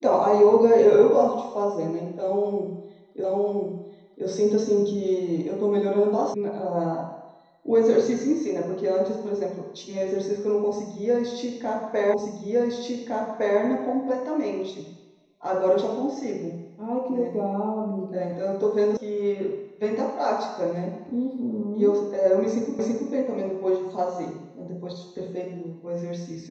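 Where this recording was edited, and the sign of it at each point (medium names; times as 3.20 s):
3.24 s: repeat of the last 1.02 s
6.34 s: sound stops dead
12.14 s: repeat of the last 1.46 s
18.97 s: sound stops dead
22.79 s: repeat of the last 0.33 s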